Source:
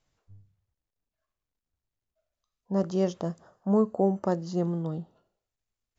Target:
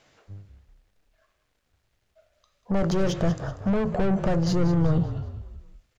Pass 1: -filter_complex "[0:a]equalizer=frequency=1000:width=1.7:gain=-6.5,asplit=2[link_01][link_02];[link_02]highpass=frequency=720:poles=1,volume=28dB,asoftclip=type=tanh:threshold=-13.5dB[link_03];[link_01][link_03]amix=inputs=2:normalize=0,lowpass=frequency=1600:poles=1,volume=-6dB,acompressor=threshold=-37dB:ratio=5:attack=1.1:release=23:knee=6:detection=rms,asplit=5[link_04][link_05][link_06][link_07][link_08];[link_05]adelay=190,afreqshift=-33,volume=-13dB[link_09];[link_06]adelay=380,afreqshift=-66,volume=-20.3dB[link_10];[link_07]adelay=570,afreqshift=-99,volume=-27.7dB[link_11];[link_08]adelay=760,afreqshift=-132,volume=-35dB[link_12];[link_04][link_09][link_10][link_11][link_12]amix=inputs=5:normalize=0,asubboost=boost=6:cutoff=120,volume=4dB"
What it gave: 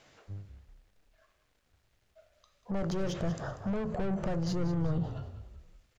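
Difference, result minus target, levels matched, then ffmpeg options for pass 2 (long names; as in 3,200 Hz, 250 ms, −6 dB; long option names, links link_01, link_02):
downward compressor: peak gain reduction +9 dB
-filter_complex "[0:a]equalizer=frequency=1000:width=1.7:gain=-6.5,asplit=2[link_01][link_02];[link_02]highpass=frequency=720:poles=1,volume=28dB,asoftclip=type=tanh:threshold=-13.5dB[link_03];[link_01][link_03]amix=inputs=2:normalize=0,lowpass=frequency=1600:poles=1,volume=-6dB,acompressor=threshold=-25.5dB:ratio=5:attack=1.1:release=23:knee=6:detection=rms,asplit=5[link_04][link_05][link_06][link_07][link_08];[link_05]adelay=190,afreqshift=-33,volume=-13dB[link_09];[link_06]adelay=380,afreqshift=-66,volume=-20.3dB[link_10];[link_07]adelay=570,afreqshift=-99,volume=-27.7dB[link_11];[link_08]adelay=760,afreqshift=-132,volume=-35dB[link_12];[link_04][link_09][link_10][link_11][link_12]amix=inputs=5:normalize=0,asubboost=boost=6:cutoff=120,volume=4dB"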